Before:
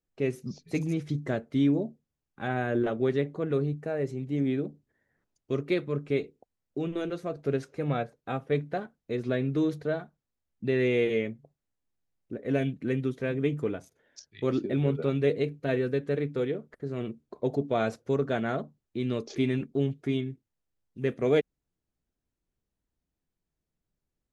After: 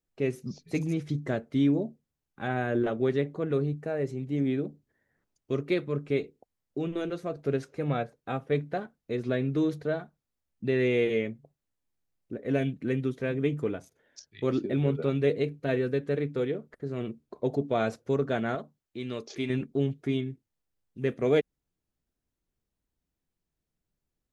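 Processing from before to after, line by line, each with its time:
0:18.55–0:19.50: low-shelf EQ 470 Hz −8 dB

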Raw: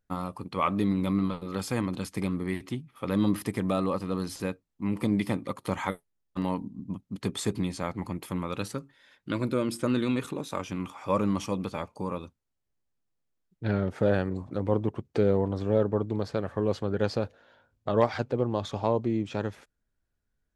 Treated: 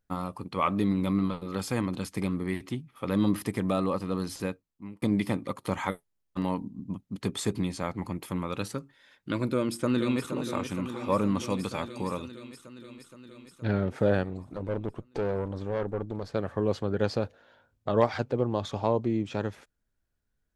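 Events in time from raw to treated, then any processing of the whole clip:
0:04.44–0:05.02: fade out
0:09.48–0:10.32: delay throw 470 ms, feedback 75%, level −9 dB
0:11.50–0:13.66: parametric band 6,500 Hz +7 dB 2.7 octaves
0:14.23–0:16.35: tube saturation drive 24 dB, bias 0.7

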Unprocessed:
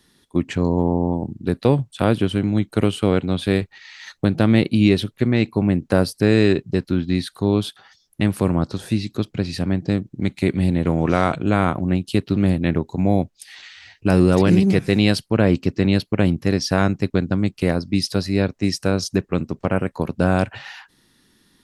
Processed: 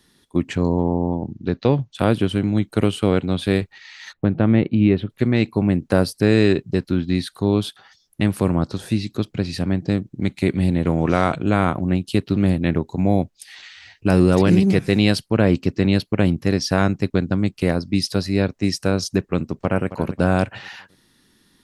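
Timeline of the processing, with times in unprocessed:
0:00.77–0:01.95: elliptic low-pass filter 6,500 Hz
0:04.13–0:05.10: high-frequency loss of the air 470 metres
0:19.48–0:19.90: delay throw 270 ms, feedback 40%, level −13 dB

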